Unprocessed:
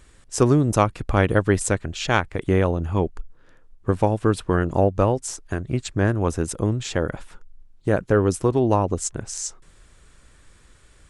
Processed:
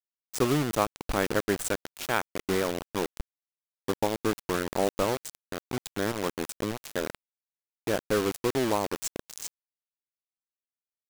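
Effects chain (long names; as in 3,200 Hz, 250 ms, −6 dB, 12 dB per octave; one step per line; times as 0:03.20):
parametric band 92 Hz −13.5 dB 0.77 octaves
bit reduction 4 bits
level −7 dB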